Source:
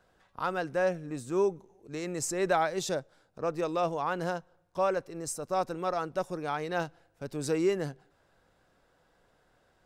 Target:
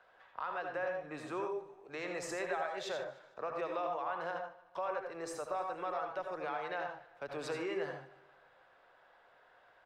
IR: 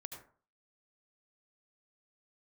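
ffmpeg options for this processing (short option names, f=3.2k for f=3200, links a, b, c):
-filter_complex "[0:a]acrossover=split=520 3500:gain=0.0891 1 0.0794[a][b][c];[a][b][c]amix=inputs=3:normalize=0,acrossover=split=120[d][e];[e]acompressor=threshold=-41dB:ratio=4[f];[d][f]amix=inputs=2:normalize=0,asplit=2[g][h];[h]alimiter=level_in=15dB:limit=-24dB:level=0:latency=1,volume=-15dB,volume=-2.5dB[i];[g][i]amix=inputs=2:normalize=0,aecho=1:1:151|302|453|604:0.1|0.047|0.0221|0.0104[j];[1:a]atrim=start_sample=2205,afade=t=out:st=0.2:d=0.01,atrim=end_sample=9261[k];[j][k]afir=irnorm=-1:irlink=0,volume=6dB"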